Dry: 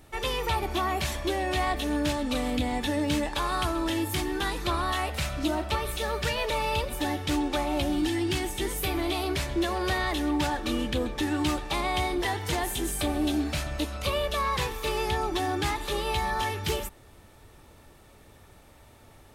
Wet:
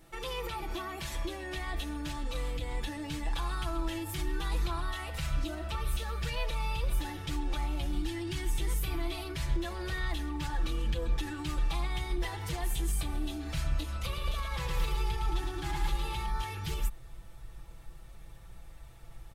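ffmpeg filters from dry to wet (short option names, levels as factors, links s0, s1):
-filter_complex "[0:a]asettb=1/sr,asplit=3[s0][s1][s2];[s0]atrim=end=14.024[s3];[s1]atrim=start=14.02:end=16.26,asetpts=PTS-STARTPTS,afade=t=in:d=0.004:c=qsin,afade=t=out:st=2.236:d=0.004:c=qsin,aecho=1:1:110|220|330|440|550|660|770:0.631|0.341|0.184|0.0994|0.0537|0.029|0.0156,atrim=end_sample=98784[s4];[s2]atrim=start=16.256[s5];[s3][s4]acrossfade=d=0.004:c1=hsin:c2=qsin[s6];[s6][s5]acrossfade=d=0.004:c1=qsin:c2=hsin,alimiter=level_in=1.12:limit=0.0631:level=0:latency=1:release=62,volume=0.891,aecho=1:1:6:0.81,asubboost=boost=6.5:cutoff=99,volume=0.501"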